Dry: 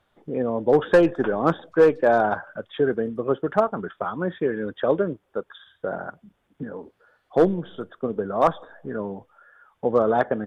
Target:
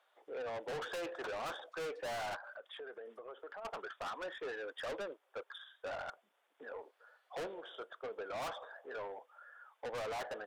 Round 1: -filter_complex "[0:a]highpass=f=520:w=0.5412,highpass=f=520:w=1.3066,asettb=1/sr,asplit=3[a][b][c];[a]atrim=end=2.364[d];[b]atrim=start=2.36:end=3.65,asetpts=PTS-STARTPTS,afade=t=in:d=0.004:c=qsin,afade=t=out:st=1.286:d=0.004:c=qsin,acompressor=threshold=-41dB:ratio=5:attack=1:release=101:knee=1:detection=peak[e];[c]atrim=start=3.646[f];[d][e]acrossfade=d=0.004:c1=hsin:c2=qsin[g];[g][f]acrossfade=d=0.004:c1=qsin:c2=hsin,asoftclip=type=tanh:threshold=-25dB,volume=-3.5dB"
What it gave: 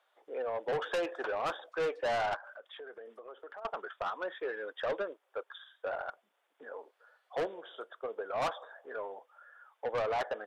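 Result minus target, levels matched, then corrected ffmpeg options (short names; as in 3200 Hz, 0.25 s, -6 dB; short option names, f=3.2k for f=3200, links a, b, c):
soft clip: distortion -5 dB
-filter_complex "[0:a]highpass=f=520:w=0.5412,highpass=f=520:w=1.3066,asettb=1/sr,asplit=3[a][b][c];[a]atrim=end=2.364[d];[b]atrim=start=2.36:end=3.65,asetpts=PTS-STARTPTS,afade=t=in:d=0.004:c=qsin,afade=t=out:st=1.286:d=0.004:c=qsin,acompressor=threshold=-41dB:ratio=5:attack=1:release=101:knee=1:detection=peak[e];[c]atrim=start=3.646[f];[d][e]acrossfade=d=0.004:c1=hsin:c2=qsin[g];[g][f]acrossfade=d=0.004:c1=qsin:c2=hsin,asoftclip=type=tanh:threshold=-35dB,volume=-3.5dB"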